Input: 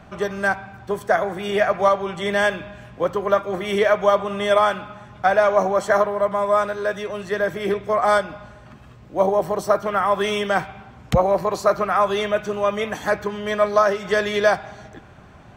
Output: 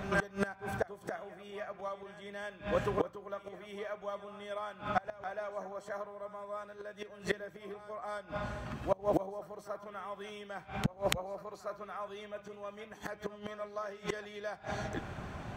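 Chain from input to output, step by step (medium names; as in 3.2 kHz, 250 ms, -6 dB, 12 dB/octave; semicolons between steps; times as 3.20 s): pre-echo 287 ms -13 dB; inverted gate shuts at -20 dBFS, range -26 dB; trim +2.5 dB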